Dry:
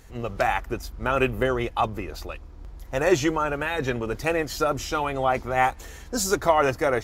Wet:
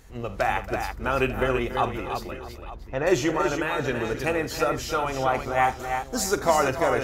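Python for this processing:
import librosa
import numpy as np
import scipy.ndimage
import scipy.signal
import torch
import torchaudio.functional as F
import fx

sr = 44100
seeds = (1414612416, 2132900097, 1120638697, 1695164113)

y = fx.air_absorb(x, sr, metres=220.0, at=(2.31, 3.07))
y = fx.echo_multitap(y, sr, ms=(45, 75, 279, 331, 639, 894), db=(-14.5, -17.5, -15.0, -6.5, -19.5, -16.5))
y = y * 10.0 ** (-1.5 / 20.0)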